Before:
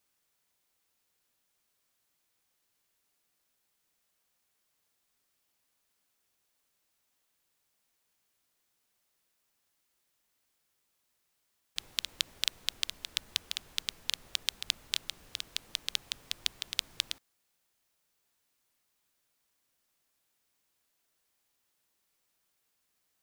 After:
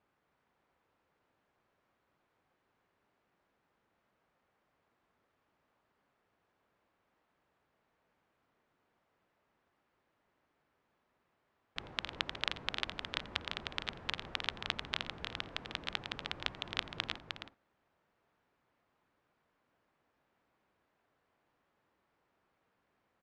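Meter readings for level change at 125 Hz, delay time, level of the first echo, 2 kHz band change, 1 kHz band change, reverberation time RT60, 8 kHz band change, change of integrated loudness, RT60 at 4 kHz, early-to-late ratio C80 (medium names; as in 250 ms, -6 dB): +9.5 dB, 86 ms, -19.5 dB, +2.0 dB, +9.0 dB, no reverb, -18.0 dB, -4.5 dB, no reverb, no reverb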